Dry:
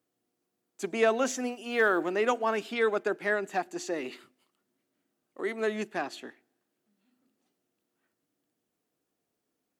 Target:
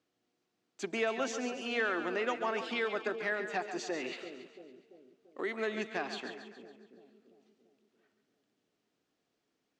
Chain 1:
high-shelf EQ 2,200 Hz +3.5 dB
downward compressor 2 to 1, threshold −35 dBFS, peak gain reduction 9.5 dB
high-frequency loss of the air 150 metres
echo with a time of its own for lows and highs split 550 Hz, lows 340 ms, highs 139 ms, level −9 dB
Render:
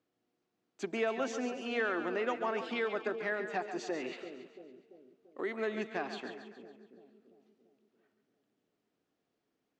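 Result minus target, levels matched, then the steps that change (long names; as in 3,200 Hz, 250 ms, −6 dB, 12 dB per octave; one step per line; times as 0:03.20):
4,000 Hz band −3.5 dB
change: high-shelf EQ 2,200 Hz +11 dB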